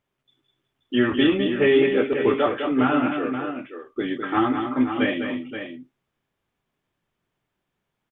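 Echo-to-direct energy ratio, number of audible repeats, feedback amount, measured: -5.0 dB, 2, no steady repeat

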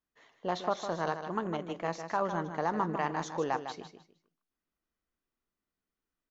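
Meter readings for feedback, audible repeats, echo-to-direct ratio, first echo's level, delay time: 25%, 3, -8.5 dB, -9.0 dB, 0.154 s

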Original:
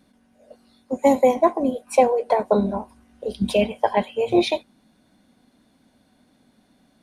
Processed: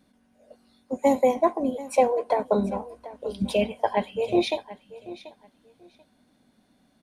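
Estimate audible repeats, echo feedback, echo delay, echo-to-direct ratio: 2, 19%, 0.736 s, -17.0 dB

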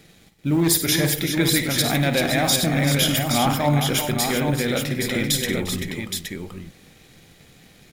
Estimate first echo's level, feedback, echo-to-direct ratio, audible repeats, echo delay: -10.5 dB, no steady repeat, -2.5 dB, 5, 54 ms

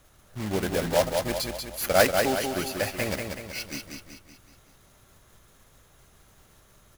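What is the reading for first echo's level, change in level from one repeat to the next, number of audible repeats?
-5.0 dB, -6.0 dB, 5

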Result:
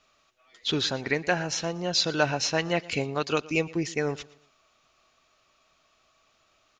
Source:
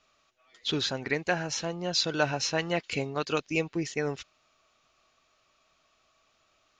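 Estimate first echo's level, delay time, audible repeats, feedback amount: -21.0 dB, 0.117 s, 2, 37%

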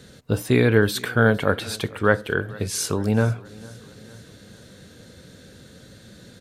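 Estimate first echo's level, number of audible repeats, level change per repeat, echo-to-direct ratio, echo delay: -22.0 dB, 3, -5.0 dB, -20.5 dB, 0.453 s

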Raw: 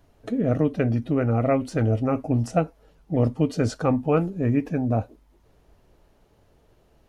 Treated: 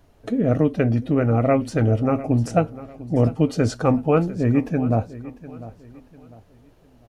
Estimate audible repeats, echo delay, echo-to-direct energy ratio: 2, 0.699 s, -16.5 dB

